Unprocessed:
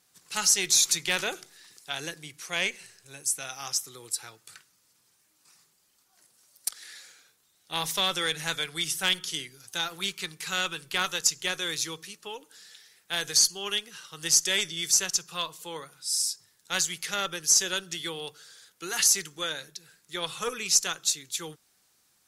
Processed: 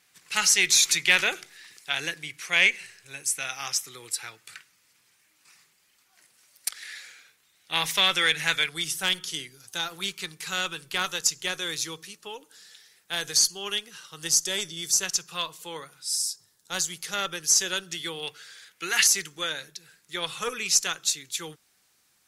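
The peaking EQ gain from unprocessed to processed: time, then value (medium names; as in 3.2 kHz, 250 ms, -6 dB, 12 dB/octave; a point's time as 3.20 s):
peaking EQ 2.2 kHz 1.2 oct
+10.5 dB
from 8.69 s 0 dB
from 14.27 s -6 dB
from 15.03 s +3 dB
from 16.16 s -5 dB
from 17.14 s +2 dB
from 18.23 s +12 dB
from 19.07 s +4 dB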